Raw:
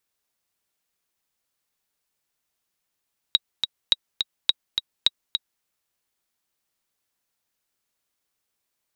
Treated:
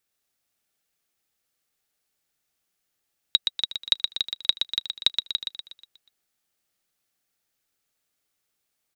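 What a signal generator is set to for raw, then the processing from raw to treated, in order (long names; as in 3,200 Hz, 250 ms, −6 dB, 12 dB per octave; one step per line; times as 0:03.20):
click track 210 BPM, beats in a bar 2, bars 4, 3,820 Hz, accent 6 dB −3.5 dBFS
notch filter 1,000 Hz, Q 5.9
on a send: repeating echo 121 ms, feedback 48%, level −5.5 dB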